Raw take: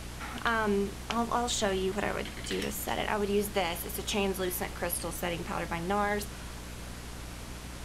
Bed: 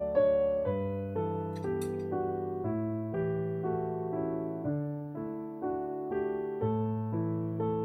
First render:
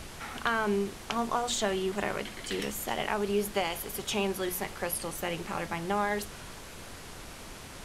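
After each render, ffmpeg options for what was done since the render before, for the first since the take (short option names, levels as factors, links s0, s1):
-af "bandreject=f=60:t=h:w=6,bandreject=f=120:t=h:w=6,bandreject=f=180:t=h:w=6,bandreject=f=240:t=h:w=6,bandreject=f=300:t=h:w=6"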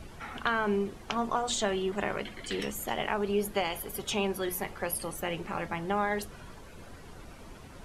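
-af "afftdn=nr=11:nf=-45"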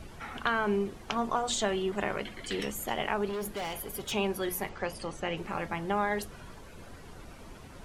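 -filter_complex "[0:a]asettb=1/sr,asplit=3[s0][s1][s2];[s0]atrim=end=3.294[s3];[s1]atrim=start=3.29:end=4.12,asetpts=PTS-STARTPTS,afade=t=in:d=0.004:c=qsin,afade=t=out:st=0.826:d=0.004:c=qsin,asoftclip=type=hard:threshold=0.0251[s4];[s2]atrim=start=4.116[s5];[s3][s4]acrossfade=d=0.004:c1=hsin:c2=qsin[s6];[s6][s5]acrossfade=d=0.004:c1=qsin:c2=hsin,asettb=1/sr,asplit=3[s7][s8][s9];[s7]atrim=end=4.694[s10];[s8]atrim=start=4.69:end=5.37,asetpts=PTS-STARTPTS,afade=t=in:d=0.004:c=qsin,afade=t=out:st=0.676:d=0.004:c=qsin,lowpass=f=7200:w=0.5412,lowpass=f=7200:w=1.3066[s11];[s9]atrim=start=5.366[s12];[s10][s11]acrossfade=d=0.004:c1=hsin:c2=qsin[s13];[s13][s12]acrossfade=d=0.004:c1=qsin:c2=hsin"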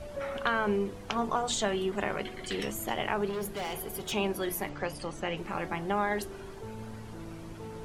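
-filter_complex "[1:a]volume=0.251[s0];[0:a][s0]amix=inputs=2:normalize=0"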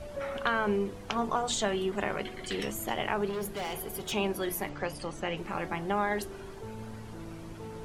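-af anull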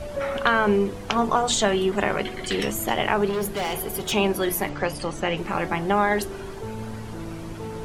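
-af "volume=2.66"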